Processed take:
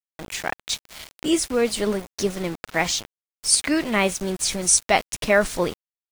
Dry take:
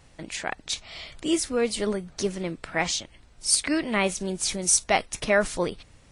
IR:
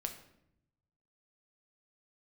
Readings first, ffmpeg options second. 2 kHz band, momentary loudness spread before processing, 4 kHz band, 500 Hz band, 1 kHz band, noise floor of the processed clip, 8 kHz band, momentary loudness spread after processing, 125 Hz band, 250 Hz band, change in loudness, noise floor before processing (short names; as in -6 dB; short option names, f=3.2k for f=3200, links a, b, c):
+3.5 dB, 11 LU, +3.5 dB, +3.5 dB, +3.5 dB, under -85 dBFS, +3.5 dB, 11 LU, +3.0 dB, +3.5 dB, +3.5 dB, -55 dBFS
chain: -af "aeval=exprs='val(0)+0.00112*(sin(2*PI*50*n/s)+sin(2*PI*2*50*n/s)/2+sin(2*PI*3*50*n/s)/3+sin(2*PI*4*50*n/s)/4+sin(2*PI*5*50*n/s)/5)':c=same,aeval=exprs='val(0)*gte(abs(val(0)),0.0168)':c=same,volume=3.5dB"